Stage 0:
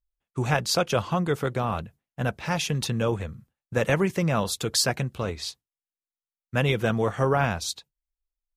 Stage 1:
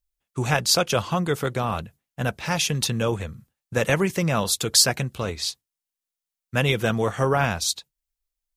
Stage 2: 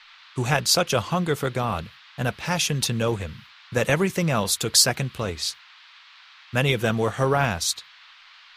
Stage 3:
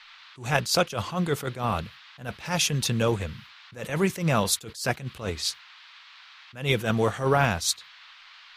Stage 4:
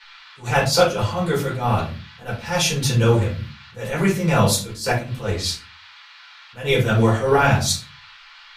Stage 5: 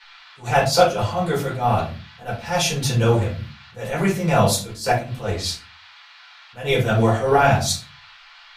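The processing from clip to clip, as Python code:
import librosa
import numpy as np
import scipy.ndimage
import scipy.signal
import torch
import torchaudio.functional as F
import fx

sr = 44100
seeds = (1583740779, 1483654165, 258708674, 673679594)

y1 = fx.high_shelf(x, sr, hz=3100.0, db=7.5)
y1 = F.gain(torch.from_numpy(y1), 1.0).numpy()
y2 = fx.dmg_noise_band(y1, sr, seeds[0], low_hz=1000.0, high_hz=4200.0, level_db=-50.0)
y3 = fx.attack_slew(y2, sr, db_per_s=150.0)
y4 = fx.room_shoebox(y3, sr, seeds[1], volume_m3=180.0, walls='furnished', distance_m=4.6)
y4 = F.gain(torch.from_numpy(y4), -3.5).numpy()
y5 = fx.small_body(y4, sr, hz=(700.0,), ring_ms=20, db=8)
y5 = F.gain(torch.from_numpy(y5), -1.5).numpy()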